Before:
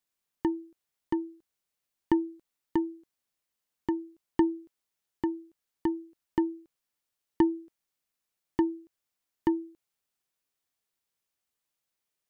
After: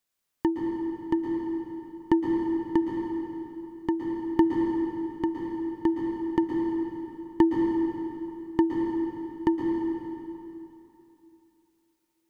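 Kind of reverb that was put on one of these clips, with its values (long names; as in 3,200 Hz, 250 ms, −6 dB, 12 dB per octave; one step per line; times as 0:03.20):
dense smooth reverb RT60 3 s, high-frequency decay 0.8×, pre-delay 105 ms, DRR 0.5 dB
level +3 dB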